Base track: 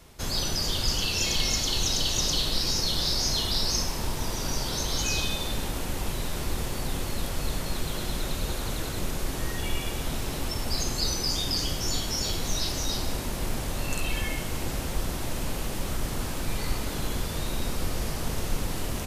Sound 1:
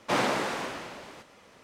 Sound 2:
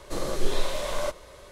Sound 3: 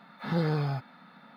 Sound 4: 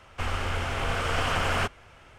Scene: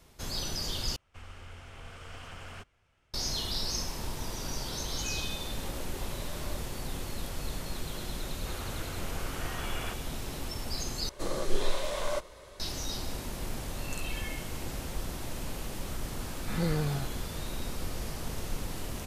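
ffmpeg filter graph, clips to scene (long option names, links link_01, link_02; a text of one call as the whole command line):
ffmpeg -i bed.wav -i cue0.wav -i cue1.wav -i cue2.wav -i cue3.wav -filter_complex "[4:a]asplit=2[link_01][link_02];[2:a]asplit=2[link_03][link_04];[0:a]volume=-6.5dB[link_05];[link_01]equalizer=frequency=870:width=0.38:gain=-5.5[link_06];[link_03]aeval=exprs='clip(val(0),-1,0.0501)':channel_layout=same[link_07];[3:a]equalizer=frequency=940:width=1.9:gain=-4.5[link_08];[link_05]asplit=3[link_09][link_10][link_11];[link_09]atrim=end=0.964[link_12];[link_06]atrim=end=2.18,asetpts=PTS-STARTPTS,volume=-16dB[link_13];[link_10]atrim=start=3.136:end=11.094[link_14];[link_04]atrim=end=1.51,asetpts=PTS-STARTPTS,volume=-3dB[link_15];[link_11]atrim=start=12.596[link_16];[link_07]atrim=end=1.51,asetpts=PTS-STARTPTS,volume=-15.5dB,afade=type=in:duration=0.004:curve=hsin,afade=type=out:start_time=1.506:duration=0.004:curve=hsin,adelay=5470[link_17];[link_02]atrim=end=2.18,asetpts=PTS-STARTPTS,volume=-14dB,afade=type=in:duration=0.004:curve=hsin,afade=type=out:start_time=2.176:duration=0.004:curve=hsin,adelay=8270[link_18];[link_08]atrim=end=1.36,asetpts=PTS-STARTPTS,volume=-2.5dB,afade=type=in:duration=0.004:curve=hsin,afade=type=out:start_time=1.356:duration=0.004:curve=hsin,adelay=16260[link_19];[link_12][link_13]acrossfade=duration=0.004:curve1=hsin:curve2=hsin[link_20];[link_20][link_14]acrossfade=duration=0.004:curve1=hsin:curve2=hsin[link_21];[link_21][link_15]acrossfade=duration=0.004:curve1=hsin:curve2=hsin[link_22];[link_22][link_16]acrossfade=duration=0.004:curve1=hsin:curve2=hsin[link_23];[link_23][link_17][link_18][link_19]amix=inputs=4:normalize=0" out.wav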